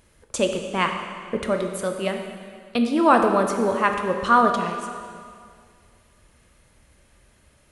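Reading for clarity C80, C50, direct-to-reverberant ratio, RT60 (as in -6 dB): 6.5 dB, 5.5 dB, 4.0 dB, 2.2 s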